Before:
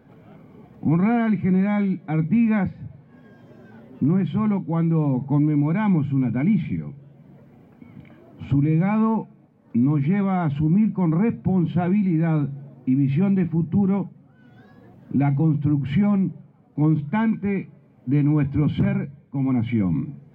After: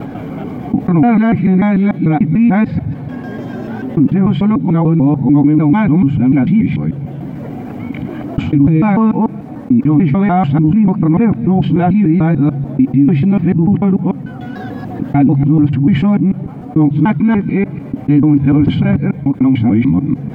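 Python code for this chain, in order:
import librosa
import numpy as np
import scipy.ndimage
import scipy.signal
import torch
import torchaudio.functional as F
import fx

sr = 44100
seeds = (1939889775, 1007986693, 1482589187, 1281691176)

y = fx.local_reverse(x, sr, ms=147.0)
y = fx.small_body(y, sr, hz=(280.0, 740.0), ring_ms=45, db=7)
y = fx.env_flatten(y, sr, amount_pct=50)
y = y * librosa.db_to_amplitude(5.0)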